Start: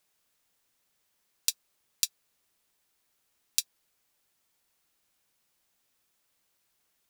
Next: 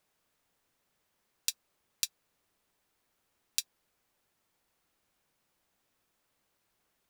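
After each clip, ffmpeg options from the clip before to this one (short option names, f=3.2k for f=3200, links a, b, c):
-af "highshelf=f=2.3k:g=-9.5,volume=4dB"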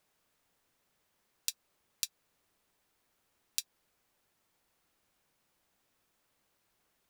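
-af "acompressor=threshold=-30dB:ratio=6,volume=1dB"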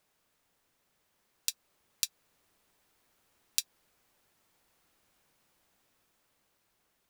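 -af "dynaudnorm=f=320:g=11:m=6dB,volume=1dB"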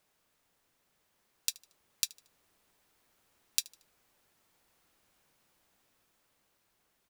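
-af "aecho=1:1:76|152|228:0.0708|0.0269|0.0102"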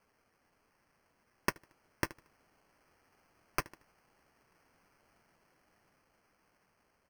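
-af "acrusher=samples=12:mix=1:aa=0.000001,volume=1.5dB"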